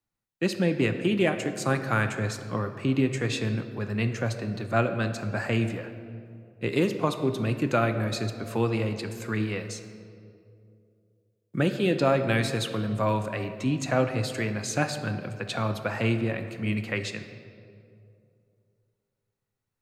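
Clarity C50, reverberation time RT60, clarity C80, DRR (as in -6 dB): 9.0 dB, 2.6 s, 10.5 dB, 7.5 dB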